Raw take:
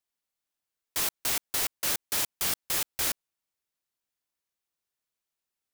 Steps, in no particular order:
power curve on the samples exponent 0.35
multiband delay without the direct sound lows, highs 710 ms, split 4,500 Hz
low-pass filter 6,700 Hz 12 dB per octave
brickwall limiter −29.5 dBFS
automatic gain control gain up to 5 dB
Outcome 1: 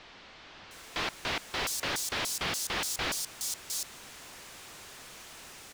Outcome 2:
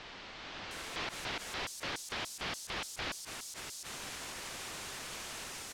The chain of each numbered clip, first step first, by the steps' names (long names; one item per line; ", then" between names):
low-pass filter, then brickwall limiter, then automatic gain control, then power curve on the samples, then multiband delay without the direct sound
power curve on the samples, then automatic gain control, then multiband delay without the direct sound, then brickwall limiter, then low-pass filter